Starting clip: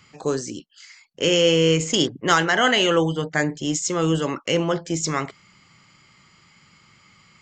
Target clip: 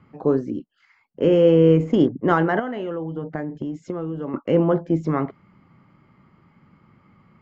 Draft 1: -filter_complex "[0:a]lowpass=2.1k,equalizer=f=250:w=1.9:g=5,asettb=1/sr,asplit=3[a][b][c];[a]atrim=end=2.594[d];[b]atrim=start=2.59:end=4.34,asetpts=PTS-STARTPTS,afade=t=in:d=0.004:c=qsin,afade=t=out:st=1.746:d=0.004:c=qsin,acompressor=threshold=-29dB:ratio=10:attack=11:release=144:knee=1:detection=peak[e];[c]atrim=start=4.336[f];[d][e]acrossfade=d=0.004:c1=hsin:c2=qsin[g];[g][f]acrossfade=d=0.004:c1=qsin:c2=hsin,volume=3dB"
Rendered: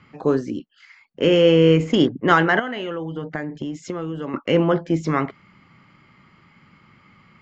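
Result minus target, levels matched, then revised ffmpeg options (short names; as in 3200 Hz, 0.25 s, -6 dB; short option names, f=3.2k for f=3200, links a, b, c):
2000 Hz band +7.0 dB
-filter_complex "[0:a]lowpass=980,equalizer=f=250:w=1.9:g=5,asettb=1/sr,asplit=3[a][b][c];[a]atrim=end=2.594[d];[b]atrim=start=2.59:end=4.34,asetpts=PTS-STARTPTS,afade=t=in:d=0.004:c=qsin,afade=t=out:st=1.746:d=0.004:c=qsin,acompressor=threshold=-29dB:ratio=10:attack=11:release=144:knee=1:detection=peak[e];[c]atrim=start=4.336[f];[d][e]acrossfade=d=0.004:c1=hsin:c2=qsin[g];[g][f]acrossfade=d=0.004:c1=qsin:c2=hsin,volume=3dB"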